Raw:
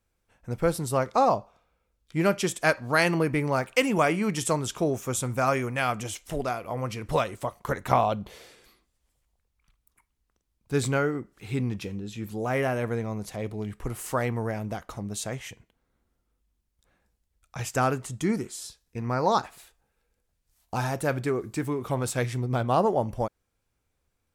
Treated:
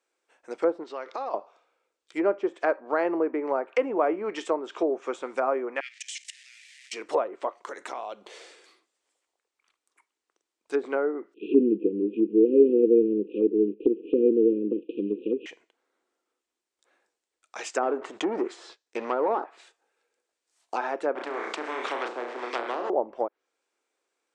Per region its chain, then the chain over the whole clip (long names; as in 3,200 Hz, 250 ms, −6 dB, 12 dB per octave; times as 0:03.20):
0:00.83–0:01.34: Gaussian smoothing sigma 1.8 samples + high-shelf EQ 2,200 Hz +9 dB + downward compressor 4 to 1, threshold −34 dBFS
0:05.80–0:06.93: converter with a step at zero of −31 dBFS + Chebyshev high-pass filter 1,800 Hz, order 6 + output level in coarse steps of 18 dB
0:07.57–0:08.28: high-shelf EQ 7,900 Hz +9 dB + downward compressor 4 to 1, threshold −35 dBFS
0:11.34–0:15.46: variable-slope delta modulation 16 kbit/s + linear-phase brick-wall band-stop 520–2,400 Hz + hollow resonant body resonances 210/300 Hz, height 17 dB, ringing for 25 ms
0:17.83–0:19.44: downward compressor 4 to 1, threshold −27 dBFS + leveller curve on the samples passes 3
0:21.15–0:22.90: Butterworth high-pass 190 Hz 72 dB per octave + flutter between parallel walls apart 5.7 metres, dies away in 0.35 s + every bin compressed towards the loudest bin 4 to 1
whole clip: elliptic band-pass filter 340–8,400 Hz, stop band 40 dB; treble cut that deepens with the level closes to 860 Hz, closed at −24.5 dBFS; level +2.5 dB